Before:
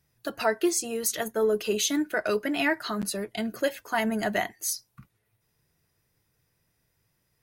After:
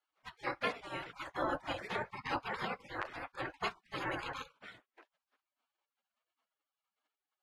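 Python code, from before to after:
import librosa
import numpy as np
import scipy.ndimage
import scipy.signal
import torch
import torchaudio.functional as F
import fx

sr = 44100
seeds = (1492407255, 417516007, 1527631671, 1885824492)

y = fx.spec_gate(x, sr, threshold_db=-30, keep='weak')
y = scipy.signal.sosfilt(scipy.signal.butter(2, 1600.0, 'lowpass', fs=sr, output='sos'), y)
y = fx.low_shelf(y, sr, hz=110.0, db=-11.5)
y = y * librosa.db_to_amplitude(16.5)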